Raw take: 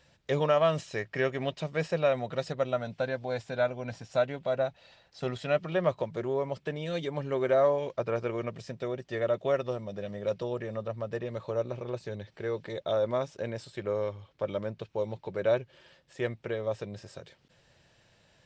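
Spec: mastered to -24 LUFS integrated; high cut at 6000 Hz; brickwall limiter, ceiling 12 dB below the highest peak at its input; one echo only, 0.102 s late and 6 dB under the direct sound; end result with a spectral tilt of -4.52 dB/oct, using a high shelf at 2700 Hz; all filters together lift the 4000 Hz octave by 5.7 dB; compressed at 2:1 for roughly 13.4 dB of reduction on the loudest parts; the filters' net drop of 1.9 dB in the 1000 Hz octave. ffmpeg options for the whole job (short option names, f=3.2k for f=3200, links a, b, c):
-af "lowpass=6k,equalizer=f=1k:t=o:g=-4,highshelf=f=2.7k:g=5,equalizer=f=4k:t=o:g=4,acompressor=threshold=-47dB:ratio=2,alimiter=level_in=14.5dB:limit=-24dB:level=0:latency=1,volume=-14.5dB,aecho=1:1:102:0.501,volume=23.5dB"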